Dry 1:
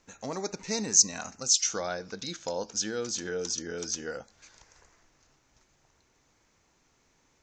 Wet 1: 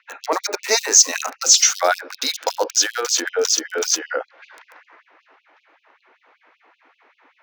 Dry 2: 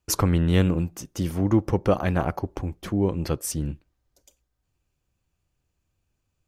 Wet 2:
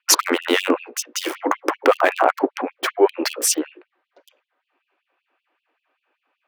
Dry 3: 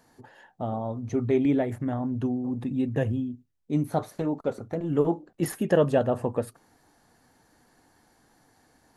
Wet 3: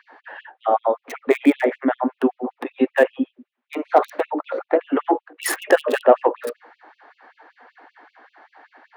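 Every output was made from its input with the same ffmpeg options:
-filter_complex "[0:a]asplit=2[s0][s1];[s1]highpass=f=720:p=1,volume=3.98,asoftclip=type=tanh:threshold=0.473[s2];[s0][s2]amix=inputs=2:normalize=0,lowpass=f=3100:p=1,volume=0.501,bandreject=f=60:t=h:w=6,bandreject=f=120:t=h:w=6,bandreject=f=180:t=h:w=6,bandreject=f=240:t=h:w=6,bandreject=f=300:t=h:w=6,bandreject=f=360:t=h:w=6,bandreject=f=420:t=h:w=6,bandreject=f=480:t=h:w=6,bandreject=f=540:t=h:w=6,bandreject=f=600:t=h:w=6,acrossover=split=510|2900[s3][s4][s5];[s5]aeval=exprs='val(0)*gte(abs(val(0)),0.00944)':c=same[s6];[s3][s4][s6]amix=inputs=3:normalize=0,alimiter=level_in=5.01:limit=0.891:release=50:level=0:latency=1,afftfilt=real='re*gte(b*sr/1024,230*pow(2600/230,0.5+0.5*sin(2*PI*5.2*pts/sr)))':imag='im*gte(b*sr/1024,230*pow(2600/230,0.5+0.5*sin(2*PI*5.2*pts/sr)))':win_size=1024:overlap=0.75,volume=0.891"

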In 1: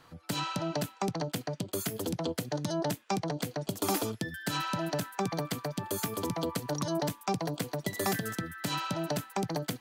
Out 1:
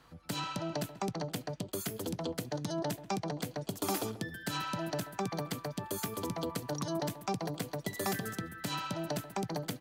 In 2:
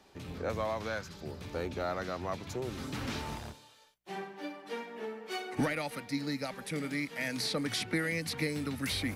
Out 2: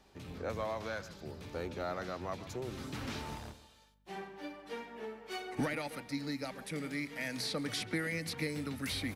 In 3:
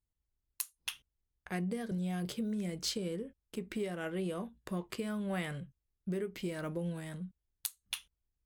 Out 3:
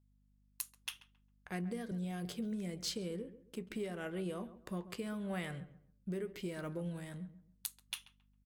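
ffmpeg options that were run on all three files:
-filter_complex "[0:a]aeval=exprs='val(0)+0.000501*(sin(2*PI*50*n/s)+sin(2*PI*2*50*n/s)/2+sin(2*PI*3*50*n/s)/3+sin(2*PI*4*50*n/s)/4+sin(2*PI*5*50*n/s)/5)':c=same,asplit=2[s0][s1];[s1]adelay=135,lowpass=f=1600:p=1,volume=0.2,asplit=2[s2][s3];[s3]adelay=135,lowpass=f=1600:p=1,volume=0.3,asplit=2[s4][s5];[s5]adelay=135,lowpass=f=1600:p=1,volume=0.3[s6];[s2][s4][s6]amix=inputs=3:normalize=0[s7];[s0][s7]amix=inputs=2:normalize=0,volume=0.668"

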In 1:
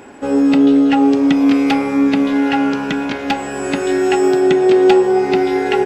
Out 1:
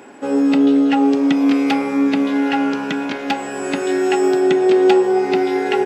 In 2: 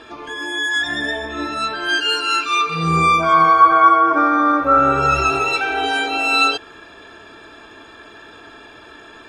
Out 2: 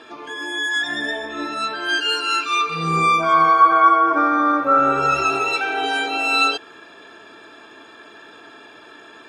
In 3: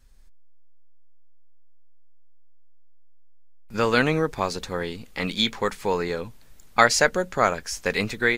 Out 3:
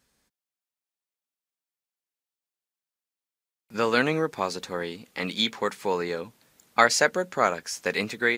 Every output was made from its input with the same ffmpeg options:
-af "highpass=170,volume=0.794"

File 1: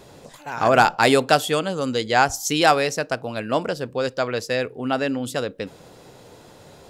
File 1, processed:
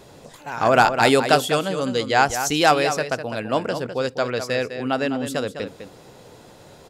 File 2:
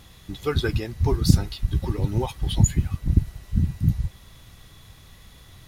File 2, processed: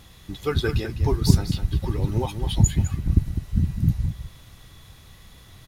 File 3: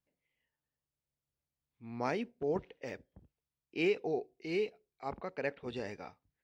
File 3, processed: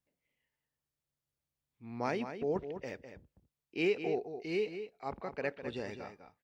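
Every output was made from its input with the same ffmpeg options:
-filter_complex "[0:a]asplit=2[s0][s1];[s1]adelay=204.1,volume=0.355,highshelf=f=4000:g=-4.59[s2];[s0][s2]amix=inputs=2:normalize=0"

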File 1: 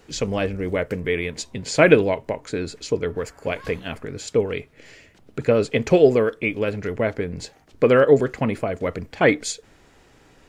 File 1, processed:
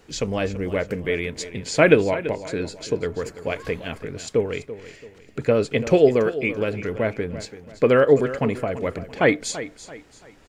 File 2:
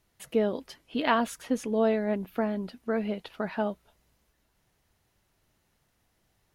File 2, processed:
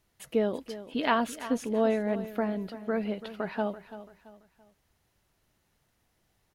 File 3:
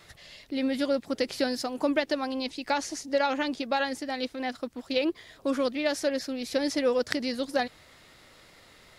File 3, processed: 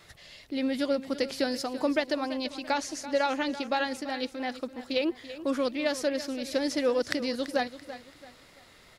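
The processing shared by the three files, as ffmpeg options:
-af "aecho=1:1:336|672|1008:0.2|0.0718|0.0259,volume=0.891"

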